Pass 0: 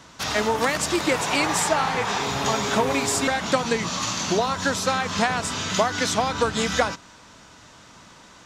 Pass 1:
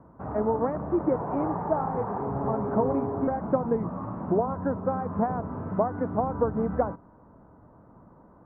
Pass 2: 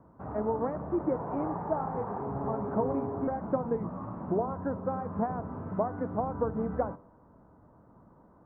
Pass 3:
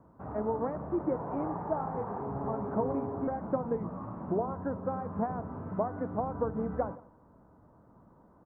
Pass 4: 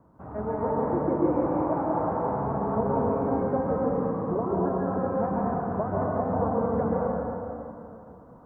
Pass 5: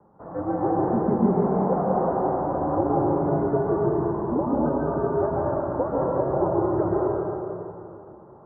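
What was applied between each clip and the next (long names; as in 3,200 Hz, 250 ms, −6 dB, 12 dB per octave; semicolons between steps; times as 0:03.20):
Bessel low-pass filter 680 Hz, order 6
flanger 0.31 Hz, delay 9.5 ms, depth 4.6 ms, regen −89%
single-tap delay 171 ms −22.5 dB; level −1.5 dB
dense smooth reverb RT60 2.8 s, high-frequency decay 0.65×, pre-delay 120 ms, DRR −6 dB
single-sideband voice off tune −120 Hz 270–2,000 Hz; level +4.5 dB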